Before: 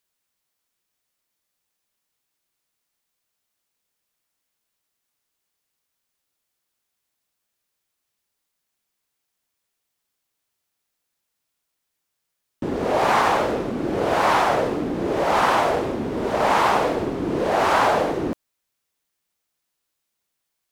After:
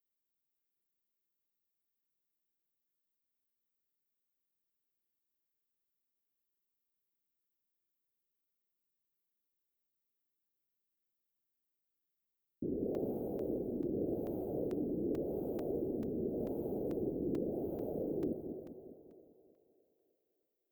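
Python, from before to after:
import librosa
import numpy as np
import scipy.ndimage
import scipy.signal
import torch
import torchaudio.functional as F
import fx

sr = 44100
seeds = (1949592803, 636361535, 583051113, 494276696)

p1 = fx.rider(x, sr, range_db=10, speed_s=2.0)
p2 = scipy.signal.sosfilt(scipy.signal.cheby2(4, 50, [990.0, 9000.0], 'bandstop', fs=sr, output='sos'), p1)
p3 = fx.low_shelf(p2, sr, hz=310.0, db=-9.5)
p4 = p3 + fx.echo_split(p3, sr, split_hz=430.0, low_ms=200, high_ms=304, feedback_pct=52, wet_db=-7.0, dry=0)
p5 = fx.buffer_crackle(p4, sr, first_s=0.63, period_s=0.44, block=128, kind='zero')
y = p5 * 10.0 ** (-6.5 / 20.0)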